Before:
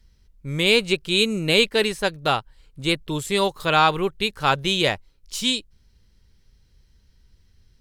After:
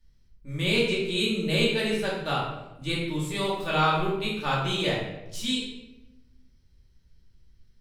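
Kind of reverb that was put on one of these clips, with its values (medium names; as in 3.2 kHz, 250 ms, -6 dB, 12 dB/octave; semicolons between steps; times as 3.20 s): simulated room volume 350 m³, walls mixed, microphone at 2.5 m; trim -13 dB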